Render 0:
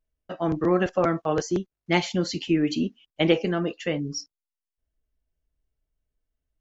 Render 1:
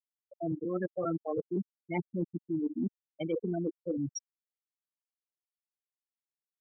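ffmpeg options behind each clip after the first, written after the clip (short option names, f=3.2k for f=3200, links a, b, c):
-af "afftfilt=real='re*gte(hypot(re,im),0.251)':imag='im*gte(hypot(re,im),0.251)':win_size=1024:overlap=0.75,areverse,acompressor=threshold=-29dB:ratio=16,areverse"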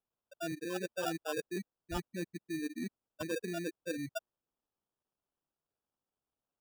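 -af "lowshelf=f=410:g=-10.5,acrusher=samples=21:mix=1:aa=0.000001,volume=1dB"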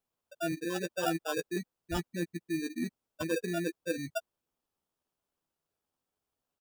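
-filter_complex "[0:a]asplit=2[a][b];[b]adelay=12,volume=-8.5dB[c];[a][c]amix=inputs=2:normalize=0,volume=3.5dB"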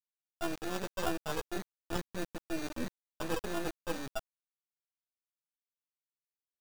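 -af "acrusher=bits=4:dc=4:mix=0:aa=0.000001,volume=1dB"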